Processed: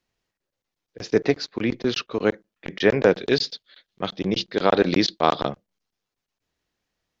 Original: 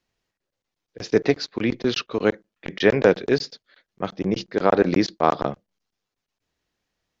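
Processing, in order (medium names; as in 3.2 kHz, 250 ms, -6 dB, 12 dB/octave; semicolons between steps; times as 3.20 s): 3.21–5.49 s: peaking EQ 3.6 kHz +12 dB 0.9 oct; trim -1 dB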